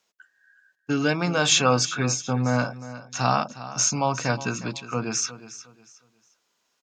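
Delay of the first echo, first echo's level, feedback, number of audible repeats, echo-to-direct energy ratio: 0.36 s, -15.0 dB, 28%, 2, -14.5 dB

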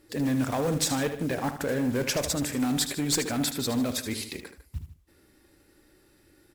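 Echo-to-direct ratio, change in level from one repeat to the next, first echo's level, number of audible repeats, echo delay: -9.0 dB, -6.0 dB, -10.0 dB, 2, 76 ms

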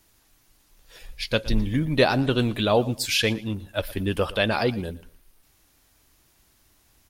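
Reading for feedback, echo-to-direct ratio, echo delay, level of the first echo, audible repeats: 23%, -19.0 dB, 0.116 s, -19.0 dB, 2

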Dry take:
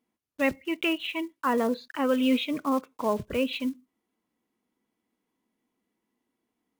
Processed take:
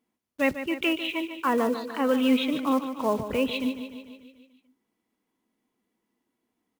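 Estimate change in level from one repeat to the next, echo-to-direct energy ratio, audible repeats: -4.5 dB, -9.0 dB, 6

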